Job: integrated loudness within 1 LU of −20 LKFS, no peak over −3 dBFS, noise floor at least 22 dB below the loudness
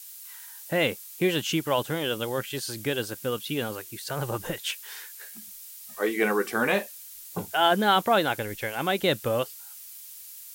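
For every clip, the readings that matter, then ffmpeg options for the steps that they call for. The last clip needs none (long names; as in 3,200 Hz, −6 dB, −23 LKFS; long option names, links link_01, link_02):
background noise floor −45 dBFS; target noise floor −49 dBFS; integrated loudness −27.0 LKFS; sample peak −9.0 dBFS; target loudness −20.0 LKFS
→ -af "afftdn=noise_reduction=6:noise_floor=-45"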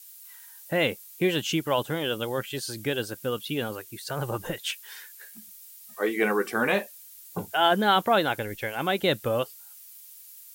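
background noise floor −48 dBFS; target noise floor −49 dBFS
→ -af "afftdn=noise_reduction=6:noise_floor=-48"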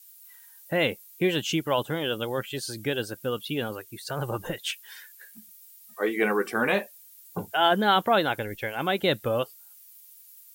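background noise floor −52 dBFS; integrated loudness −27.0 LKFS; sample peak −9.0 dBFS; target loudness −20.0 LKFS
→ -af "volume=7dB,alimiter=limit=-3dB:level=0:latency=1"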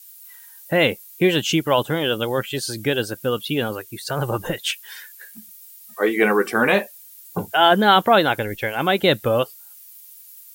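integrated loudness −20.0 LKFS; sample peak −3.0 dBFS; background noise floor −45 dBFS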